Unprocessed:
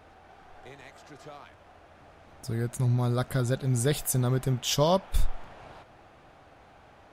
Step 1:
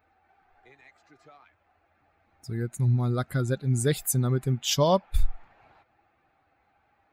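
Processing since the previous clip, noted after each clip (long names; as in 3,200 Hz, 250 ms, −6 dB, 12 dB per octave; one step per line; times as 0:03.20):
spectral dynamics exaggerated over time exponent 1.5
level +3 dB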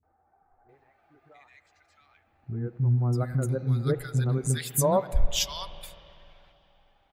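three-band delay without the direct sound lows, mids, highs 30/690 ms, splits 290/1,300 Hz
spring reverb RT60 3.1 s, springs 45/49 ms, chirp 40 ms, DRR 14 dB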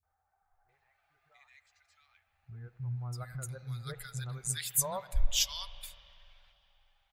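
guitar amp tone stack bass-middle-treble 10-0-10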